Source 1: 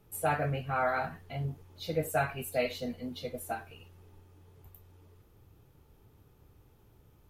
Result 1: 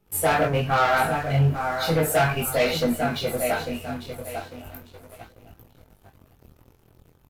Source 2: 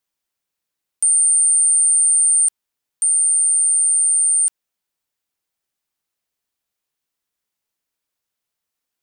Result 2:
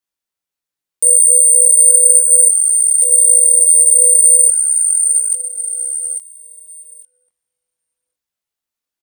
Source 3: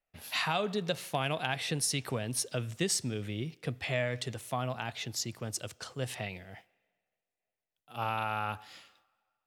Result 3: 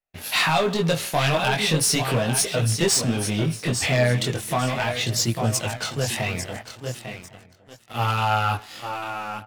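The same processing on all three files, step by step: on a send: feedback echo 0.848 s, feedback 32%, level -10.5 dB; on the sum: sample leveller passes 3; chorus voices 2, 0.37 Hz, delay 21 ms, depth 3.8 ms; outdoor echo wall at 190 m, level -22 dB; gain +5.5 dB

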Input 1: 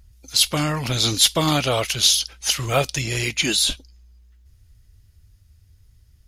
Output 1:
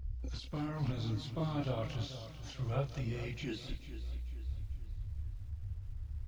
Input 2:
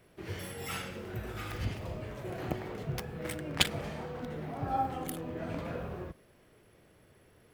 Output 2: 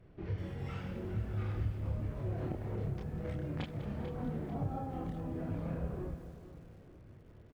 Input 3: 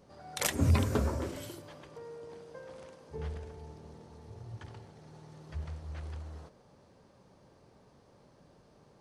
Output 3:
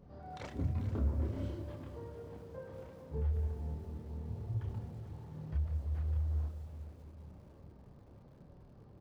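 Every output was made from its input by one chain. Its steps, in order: tone controls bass +8 dB, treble +9 dB; compressor 4:1, threshold -34 dBFS; chorus voices 4, 0.85 Hz, delay 29 ms, depth 2.1 ms; tape spacing loss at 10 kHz 41 dB; feedback echo 0.442 s, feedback 41%, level -12.5 dB; lo-fi delay 0.198 s, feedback 35%, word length 10-bit, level -14 dB; gain +3.5 dB

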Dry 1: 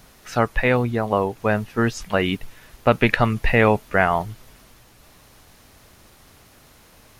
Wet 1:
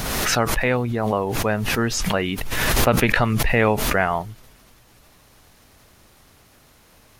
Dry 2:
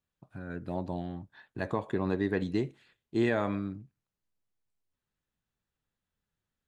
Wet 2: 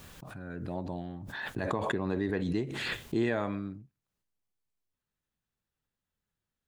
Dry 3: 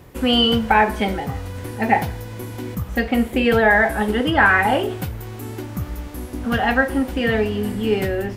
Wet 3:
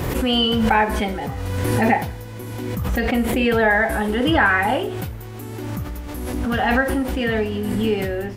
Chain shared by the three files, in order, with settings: backwards sustainer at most 24 dB/s; gain -2.5 dB

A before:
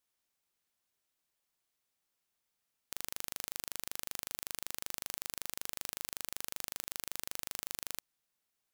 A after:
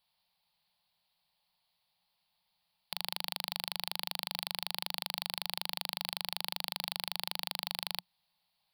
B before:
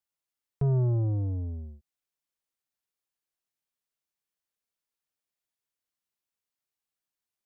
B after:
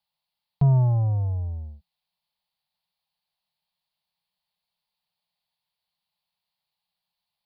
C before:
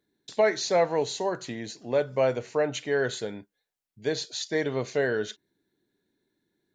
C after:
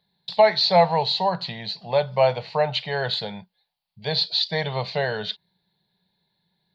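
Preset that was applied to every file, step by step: EQ curve 120 Hz 0 dB, 180 Hz +9 dB, 280 Hz -22 dB, 530 Hz -2 dB, 870 Hz +9 dB, 1400 Hz -5 dB, 4500 Hz +10 dB, 6500 Hz -24 dB, 10000 Hz -5 dB; gain +4.5 dB

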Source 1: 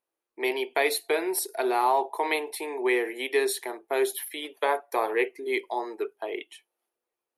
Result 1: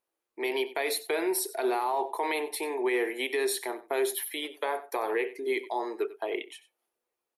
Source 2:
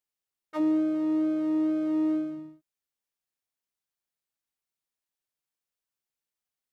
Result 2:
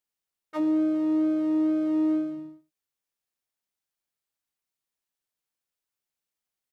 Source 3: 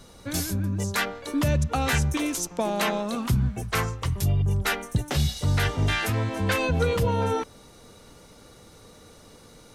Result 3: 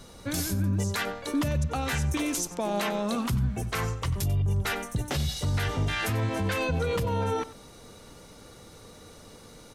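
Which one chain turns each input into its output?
limiter -21 dBFS; echo 93 ms -16.5 dB; gain +1 dB

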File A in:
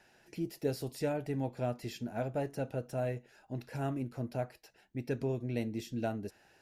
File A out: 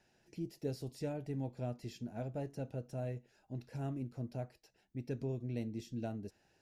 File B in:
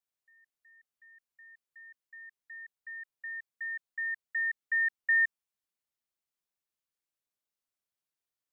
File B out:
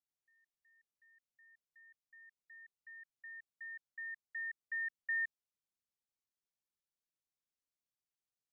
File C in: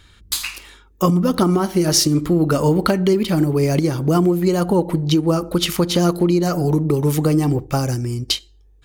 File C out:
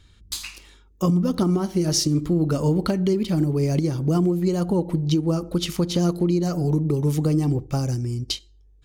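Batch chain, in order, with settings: EQ curve 160 Hz 0 dB, 1500 Hz -9 dB, 6100 Hz -3 dB, 13000 Hz -10 dB; gain -2.5 dB

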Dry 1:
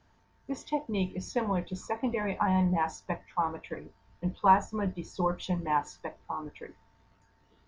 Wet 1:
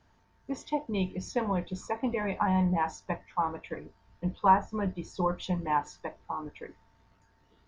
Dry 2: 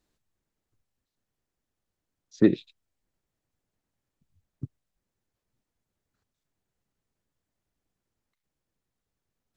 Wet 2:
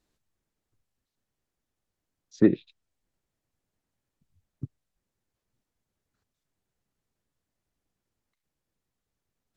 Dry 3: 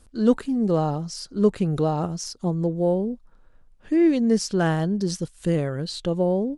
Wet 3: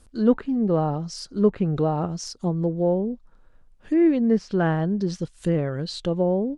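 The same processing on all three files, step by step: treble ducked by the level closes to 2300 Hz, closed at -18.5 dBFS

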